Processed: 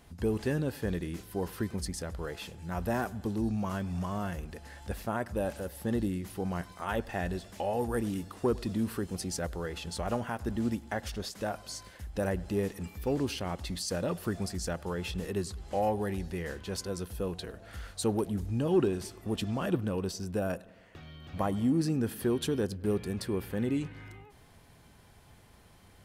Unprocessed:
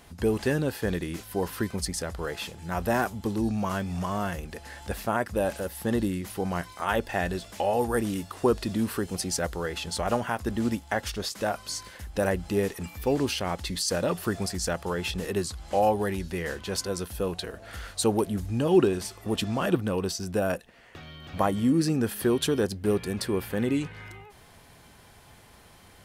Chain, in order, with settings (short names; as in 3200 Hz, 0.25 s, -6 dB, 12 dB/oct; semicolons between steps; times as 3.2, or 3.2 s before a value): low shelf 340 Hz +6 dB; on a send: analogue delay 0.101 s, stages 2048, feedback 61%, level -22.5 dB; on the sum: soft clip -8 dBFS, distortion -27 dB; gain -7.5 dB